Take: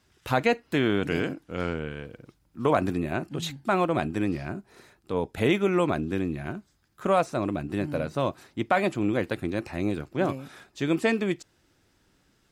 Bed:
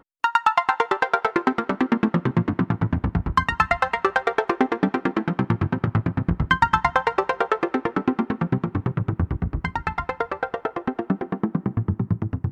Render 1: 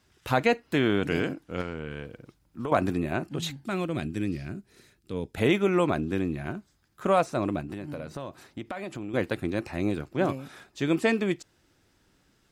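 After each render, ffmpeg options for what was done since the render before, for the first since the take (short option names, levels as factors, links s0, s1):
-filter_complex "[0:a]asettb=1/sr,asplit=3[s0][s1][s2];[s0]atrim=end=1.614[s3];[s1]atrim=start=1.61:end=2.72,asetpts=PTS-STARTPTS,afade=t=in:d=0.004:c=qsin,afade=t=out:st=1.106:d=0.004:c=qsin,acompressor=threshold=0.0355:ratio=4:attack=3.2:release=140:knee=1:detection=peak[s4];[s2]atrim=start=2.716[s5];[s3][s4]acrossfade=d=0.004:c1=hsin:c2=qsin[s6];[s6][s5]acrossfade=d=0.004:c1=qsin:c2=hsin,asettb=1/sr,asplit=3[s7][s8][s9];[s7]atrim=end=3.664[s10];[s8]atrim=start=3.66:end=5.34,asetpts=PTS-STARTPTS,afade=t=in:d=0.004:c=qsin,afade=t=out:st=1.676:d=0.004:c=qsin,equalizer=f=860:t=o:w=1.7:g=-13.5[s11];[s9]atrim=start=5.336[s12];[s10][s11]acrossfade=d=0.004:c1=hsin:c2=qsin[s13];[s13][s12]acrossfade=d=0.004:c1=qsin:c2=hsin,asettb=1/sr,asplit=3[s14][s15][s16];[s14]atrim=end=7.604[s17];[s15]atrim=start=7.6:end=9.14,asetpts=PTS-STARTPTS,afade=t=in:d=0.004:c=qsin,afade=t=out:st=1.536:d=0.004:c=qsin,acompressor=threshold=0.0251:ratio=6:attack=3.2:release=140:knee=1:detection=peak[s18];[s16]atrim=start=9.136[s19];[s17][s18]acrossfade=d=0.004:c1=hsin:c2=qsin[s20];[s20][s19]acrossfade=d=0.004:c1=qsin:c2=hsin"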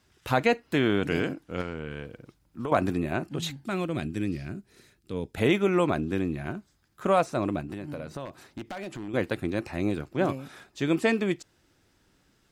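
-filter_complex "[0:a]asettb=1/sr,asplit=3[s0][s1][s2];[s0]atrim=end=8.254[s3];[s1]atrim=start=8.25:end=9.08,asetpts=PTS-STARTPTS,afade=t=in:d=0.004:c=qsin,afade=t=out:st=0.826:d=0.004:c=qsin,aeval=exprs='0.0335*(abs(mod(val(0)/0.0335+3,4)-2)-1)':c=same[s4];[s2]atrim=start=9.076[s5];[s3][s4]acrossfade=d=0.004:c1=hsin:c2=qsin[s6];[s6][s5]acrossfade=d=0.004:c1=qsin:c2=hsin"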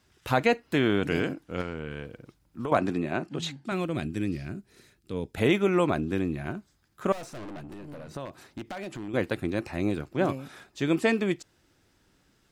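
-filter_complex "[0:a]asettb=1/sr,asplit=3[s0][s1][s2];[s0]atrim=end=2.784[s3];[s1]atrim=start=2.78:end=3.72,asetpts=PTS-STARTPTS,afade=t=in:d=0.004:c=qsin,afade=t=out:st=0.936:d=0.004:c=qsin,highpass=140,lowpass=7500[s4];[s2]atrim=start=3.716[s5];[s3][s4]acrossfade=d=0.004:c1=hsin:c2=qsin[s6];[s6][s5]acrossfade=d=0.004:c1=qsin:c2=hsin,asettb=1/sr,asplit=3[s7][s8][s9];[s7]atrim=end=7.124[s10];[s8]atrim=start=7.12:end=8.09,asetpts=PTS-STARTPTS,afade=t=in:d=0.004:c=qsin,afade=t=out:st=0.966:d=0.004:c=qsin,aeval=exprs='(tanh(79.4*val(0)+0.35)-tanh(0.35))/79.4':c=same[s11];[s9]atrim=start=8.086[s12];[s10][s11]acrossfade=d=0.004:c1=hsin:c2=qsin[s13];[s13][s12]acrossfade=d=0.004:c1=qsin:c2=hsin"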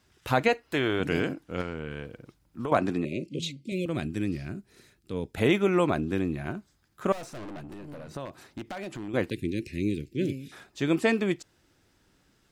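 -filter_complex "[0:a]asettb=1/sr,asplit=3[s0][s1][s2];[s0]atrim=end=0.484[s3];[s1]atrim=start=0.48:end=1,asetpts=PTS-STARTPTS,afade=t=in:d=0.004:c=qsin,afade=t=out:st=0.516:d=0.004:c=qsin,equalizer=f=200:w=1.5:g=-10[s4];[s2]atrim=start=0.996[s5];[s3][s4]acrossfade=d=0.004:c1=hsin:c2=qsin[s6];[s6][s5]acrossfade=d=0.004:c1=qsin:c2=hsin,asettb=1/sr,asplit=3[s7][s8][s9];[s7]atrim=end=3.054[s10];[s8]atrim=start=3.05:end=3.86,asetpts=PTS-STARTPTS,afade=t=in:d=0.004:c=qsin,afade=t=out:st=0.806:d=0.004:c=qsin,asuperstop=centerf=1100:order=20:qfactor=0.72[s11];[s9]atrim=start=3.856[s12];[s10][s11]acrossfade=d=0.004:c1=hsin:c2=qsin[s13];[s13][s12]acrossfade=d=0.004:c1=qsin:c2=hsin,asettb=1/sr,asplit=3[s14][s15][s16];[s14]atrim=end=9.304[s17];[s15]atrim=start=9.3:end=10.52,asetpts=PTS-STARTPTS,afade=t=in:d=0.004:c=qsin,afade=t=out:st=1.216:d=0.004:c=qsin,asuperstop=centerf=950:order=8:qfactor=0.57[s18];[s16]atrim=start=10.516[s19];[s17][s18]acrossfade=d=0.004:c1=hsin:c2=qsin[s20];[s20][s19]acrossfade=d=0.004:c1=qsin:c2=hsin"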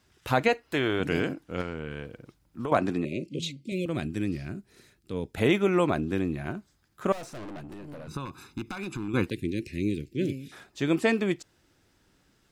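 -filter_complex "[0:a]asettb=1/sr,asplit=3[s0][s1][s2];[s0]atrim=end=8.074[s3];[s1]atrim=start=8.07:end=9.27,asetpts=PTS-STARTPTS,afade=t=in:d=0.004:c=qsin,afade=t=out:st=1.196:d=0.004:c=qsin,aecho=1:1:0.8:0.94,atrim=end_sample=52920[s4];[s2]atrim=start=9.266[s5];[s3][s4]acrossfade=d=0.004:c1=hsin:c2=qsin[s6];[s6][s5]acrossfade=d=0.004:c1=qsin:c2=hsin"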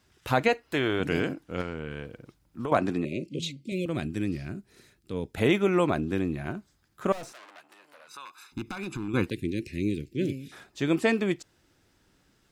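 -filter_complex "[0:a]asettb=1/sr,asplit=3[s0][s1][s2];[s0]atrim=end=7.324[s3];[s1]atrim=start=7.32:end=8.52,asetpts=PTS-STARTPTS,afade=t=in:d=0.004:c=qsin,afade=t=out:st=1.196:d=0.004:c=qsin,highpass=1100[s4];[s2]atrim=start=8.516[s5];[s3][s4]acrossfade=d=0.004:c1=hsin:c2=qsin[s6];[s6][s5]acrossfade=d=0.004:c1=qsin:c2=hsin"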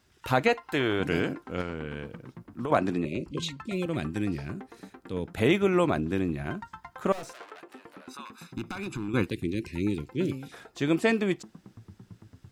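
-filter_complex "[1:a]volume=0.0531[s0];[0:a][s0]amix=inputs=2:normalize=0"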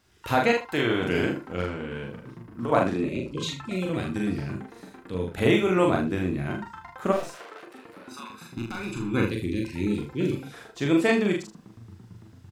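-filter_complex "[0:a]asplit=2[s0][s1];[s1]adelay=43,volume=0.708[s2];[s0][s2]amix=inputs=2:normalize=0,asplit=2[s3][s4];[s4]aecho=0:1:34|79:0.447|0.188[s5];[s3][s5]amix=inputs=2:normalize=0"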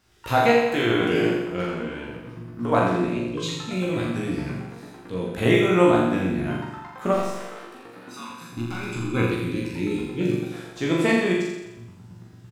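-filter_complex "[0:a]asplit=2[s0][s1];[s1]adelay=17,volume=0.631[s2];[s0][s2]amix=inputs=2:normalize=0,asplit=2[s3][s4];[s4]aecho=0:1:85|170|255|340|425|510|595:0.562|0.315|0.176|0.0988|0.0553|0.031|0.0173[s5];[s3][s5]amix=inputs=2:normalize=0"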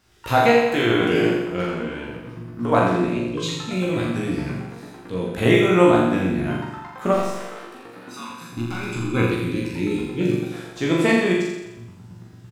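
-af "volume=1.33,alimiter=limit=0.794:level=0:latency=1"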